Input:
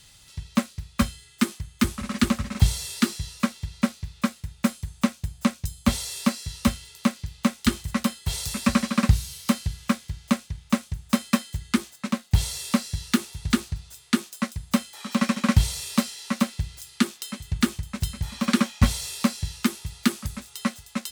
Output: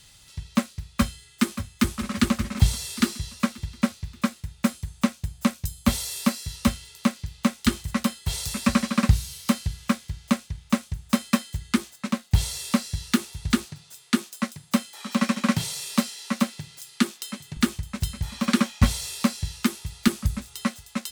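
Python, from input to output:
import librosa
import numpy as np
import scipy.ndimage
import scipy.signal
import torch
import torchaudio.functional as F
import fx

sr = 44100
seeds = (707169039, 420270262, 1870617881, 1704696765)

y = fx.echo_throw(x, sr, start_s=0.88, length_s=1.06, ms=580, feedback_pct=50, wet_db=-11.5)
y = fx.peak_eq(y, sr, hz=14000.0, db=6.5, octaves=0.57, at=(5.42, 6.56))
y = fx.highpass(y, sr, hz=140.0, slope=24, at=(13.65, 17.57))
y = fx.low_shelf(y, sr, hz=200.0, db=9.5, at=(20.07, 20.65))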